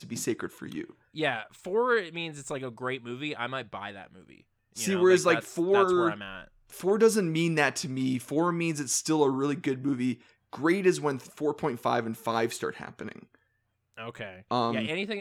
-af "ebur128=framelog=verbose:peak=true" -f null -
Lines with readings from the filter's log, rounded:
Integrated loudness:
  I:         -28.0 LUFS
  Threshold: -39.0 LUFS
Loudness range:
  LRA:         7.2 LU
  Threshold: -48.6 LUFS
  LRA low:   -33.0 LUFS
  LRA high:  -25.8 LUFS
True peak:
  Peak:       -9.1 dBFS